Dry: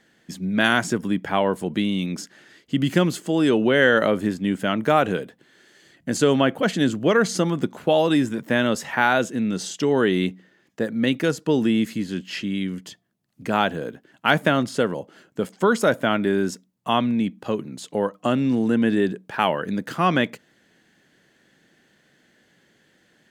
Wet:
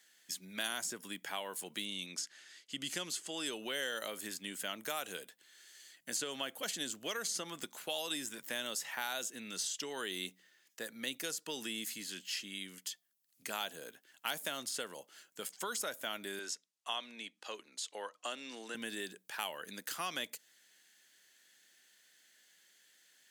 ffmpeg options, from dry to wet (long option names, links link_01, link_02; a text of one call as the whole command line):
ffmpeg -i in.wav -filter_complex "[0:a]asettb=1/sr,asplit=3[link_01][link_02][link_03];[link_01]atrim=end=1.854[link_04];[link_02]atrim=start=1.85:end=3.46,asetpts=PTS-STARTPTS,afade=type=in:duration=0.004:curve=qsin,afade=type=out:start_time=1.606:duration=0.004:curve=qsin,lowpass=8600[link_05];[link_03]atrim=start=3.456[link_06];[link_04][link_05]acrossfade=duration=0.004:curve1=hsin:curve2=qsin[link_07];[link_07][link_06]acrossfade=duration=0.004:curve1=qsin:curve2=hsin,asettb=1/sr,asplit=3[link_08][link_09][link_10];[link_08]atrim=end=16.394[link_11];[link_09]atrim=start=16.39:end=18.75,asetpts=PTS-STARTPTS,afade=type=in:duration=0.004:curve=qsin,afade=type=out:start_time=2.356:duration=0.004:curve=qsin,highpass=360,lowpass=6600[link_12];[link_10]atrim=start=18.746[link_13];[link_11][link_12]acrossfade=duration=0.004:curve1=hsin:curve2=qsin[link_14];[link_14][link_13]acrossfade=duration=0.004:curve1=qsin:curve2=hsin,aderivative,acrossover=split=960|3900[link_15][link_16][link_17];[link_15]acompressor=threshold=-45dB:ratio=4[link_18];[link_16]acompressor=threshold=-48dB:ratio=4[link_19];[link_17]acompressor=threshold=-43dB:ratio=4[link_20];[link_18][link_19][link_20]amix=inputs=3:normalize=0,volume=4dB" out.wav